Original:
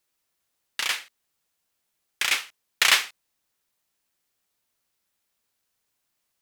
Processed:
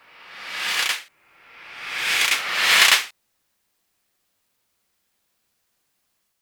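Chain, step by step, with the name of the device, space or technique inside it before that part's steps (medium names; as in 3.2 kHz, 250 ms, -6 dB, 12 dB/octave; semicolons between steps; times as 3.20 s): reverse reverb (reverse; reverberation RT60 1.8 s, pre-delay 78 ms, DRR -2.5 dB; reverse); trim +2.5 dB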